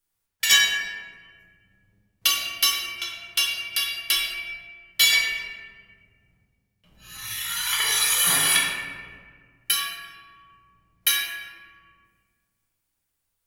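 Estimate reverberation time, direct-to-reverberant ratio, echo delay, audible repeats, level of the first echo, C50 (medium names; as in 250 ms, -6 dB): 1.7 s, -3.5 dB, no echo, no echo, no echo, 0.5 dB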